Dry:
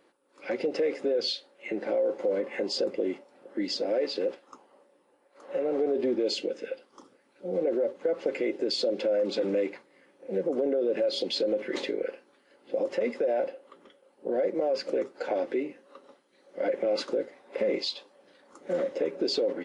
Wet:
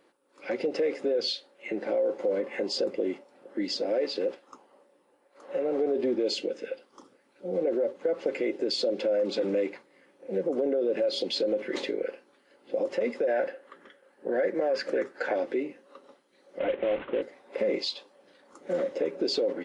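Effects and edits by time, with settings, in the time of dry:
13.27–15.36 bell 1700 Hz +13.5 dB 0.5 oct
16.59–17.22 CVSD 16 kbps

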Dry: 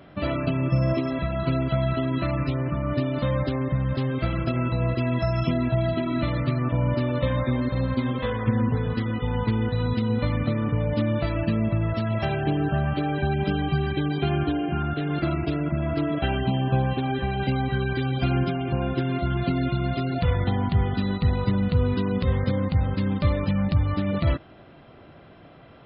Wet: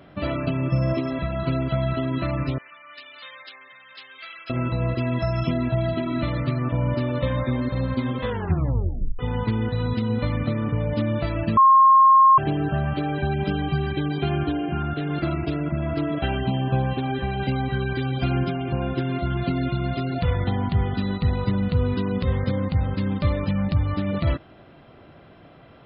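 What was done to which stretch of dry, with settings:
2.58–4.5 Chebyshev high-pass 2200 Hz
8.29 tape stop 0.90 s
11.57–12.38 bleep 1070 Hz -10 dBFS

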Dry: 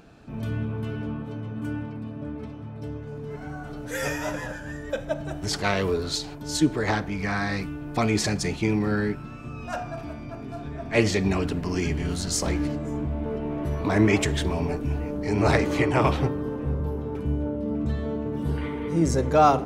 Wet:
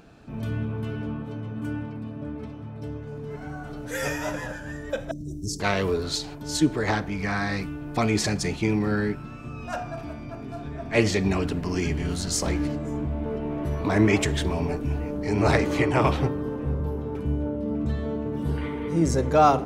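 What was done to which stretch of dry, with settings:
5.11–5.6 elliptic band-stop 350–5700 Hz, stop band 60 dB

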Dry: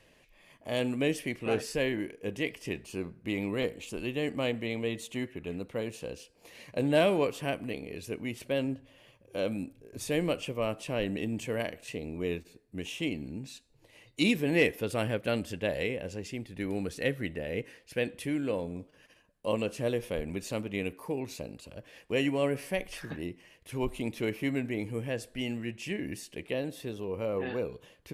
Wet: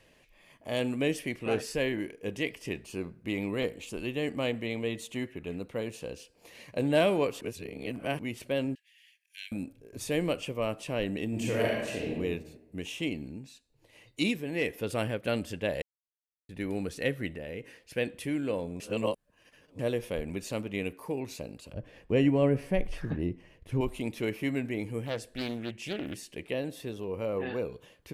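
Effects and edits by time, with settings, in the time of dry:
1.95–2.45 dynamic EQ 5200 Hz, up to +3 dB, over -51 dBFS, Q 0.73
7.41–8.19 reverse
8.75–9.52 steep high-pass 1700 Hz 96 dB/oct
11.29–12.12 reverb throw, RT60 1.2 s, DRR -3.5 dB
13.14–15.23 tremolo 1.1 Hz, depth 56%
15.82–16.49 mute
17.34–17.8 compressor 2.5:1, threshold -37 dBFS
18.8–19.79 reverse
21.73–23.81 tilt -3 dB/oct
25.06–26.32 Doppler distortion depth 0.43 ms

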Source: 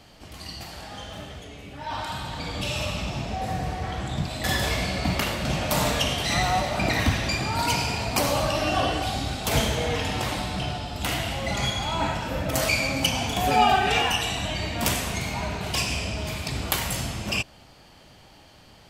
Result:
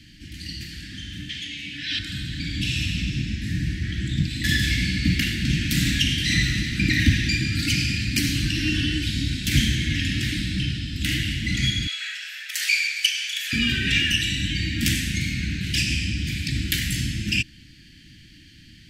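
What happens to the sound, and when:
1.29–1.99 weighting filter D
11.87–13.53 steep high-pass 610 Hz 96 dB/oct
whole clip: Chebyshev band-stop 320–1700 Hz, order 4; high shelf 7000 Hz -8.5 dB; gain +5.5 dB

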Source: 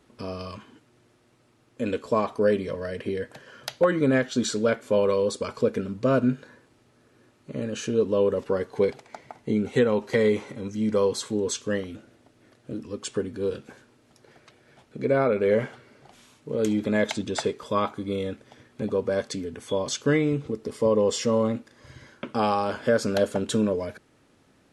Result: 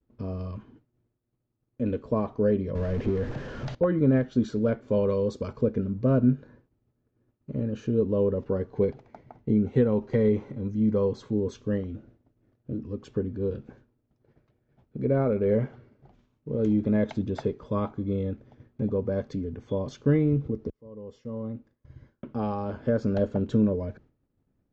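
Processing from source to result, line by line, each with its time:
2.75–3.75 zero-crossing step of -28 dBFS
4.88–5.53 high shelf 4500 Hz +11 dB
20.7–23.18 fade in
whole clip: tilt -4.5 dB/oct; expander -40 dBFS; steep low-pass 7000 Hz 48 dB/oct; gain -8 dB

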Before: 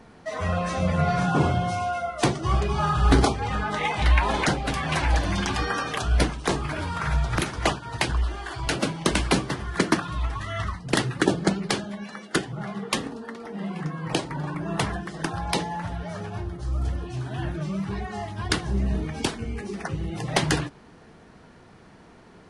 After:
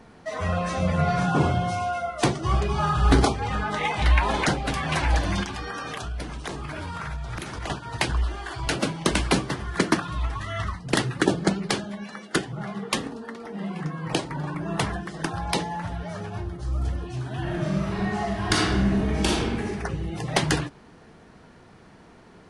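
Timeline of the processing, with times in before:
5.43–7.7 compressor, threshold -29 dBFS
17.42–19.66 reverb throw, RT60 1.3 s, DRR -4 dB

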